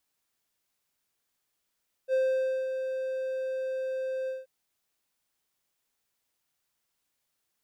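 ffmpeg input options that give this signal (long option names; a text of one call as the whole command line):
ffmpeg -f lavfi -i "aevalsrc='0.1*(1-4*abs(mod(523*t+0.25,1)-0.5))':duration=2.38:sample_rate=44100,afade=type=in:duration=0.053,afade=type=out:start_time=0.053:duration=0.536:silence=0.422,afade=type=out:start_time=2.2:duration=0.18" out.wav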